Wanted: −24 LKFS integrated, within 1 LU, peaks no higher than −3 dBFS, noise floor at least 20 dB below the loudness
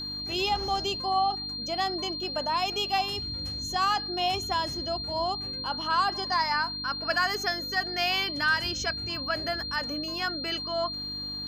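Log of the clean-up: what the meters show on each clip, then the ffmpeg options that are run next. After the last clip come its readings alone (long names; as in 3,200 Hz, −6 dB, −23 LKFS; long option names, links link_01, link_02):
mains hum 50 Hz; hum harmonics up to 300 Hz; level of the hum −42 dBFS; interfering tone 4,200 Hz; level of the tone −33 dBFS; integrated loudness −28.0 LKFS; sample peak −14.5 dBFS; target loudness −24.0 LKFS
→ -af "bandreject=frequency=50:width_type=h:width=4,bandreject=frequency=100:width_type=h:width=4,bandreject=frequency=150:width_type=h:width=4,bandreject=frequency=200:width_type=h:width=4,bandreject=frequency=250:width_type=h:width=4,bandreject=frequency=300:width_type=h:width=4"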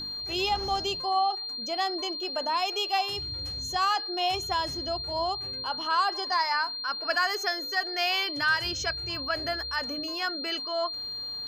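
mains hum none found; interfering tone 4,200 Hz; level of the tone −33 dBFS
→ -af "bandreject=frequency=4200:width=30"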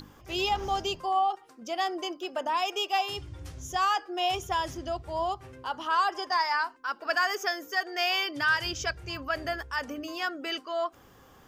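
interfering tone none found; integrated loudness −29.5 LKFS; sample peak −15.0 dBFS; target loudness −24.0 LKFS
→ -af "volume=5.5dB"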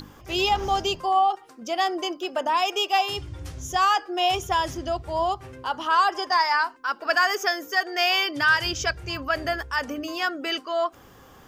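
integrated loudness −24.0 LKFS; sample peak −9.5 dBFS; background noise floor −50 dBFS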